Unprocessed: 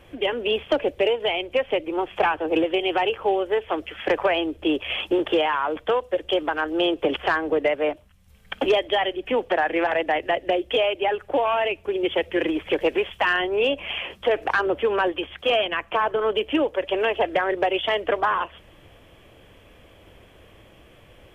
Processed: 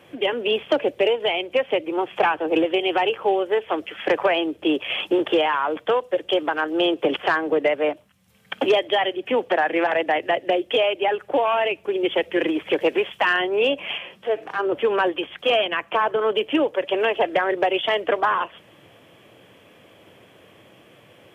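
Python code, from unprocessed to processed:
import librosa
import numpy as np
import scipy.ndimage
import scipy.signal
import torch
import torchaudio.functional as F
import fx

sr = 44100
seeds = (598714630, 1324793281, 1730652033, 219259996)

y = scipy.signal.sosfilt(scipy.signal.butter(4, 120.0, 'highpass', fs=sr, output='sos'), x)
y = fx.hpss(y, sr, part='percussive', gain_db=-17, at=(13.97, 14.72))
y = y * librosa.db_to_amplitude(1.5)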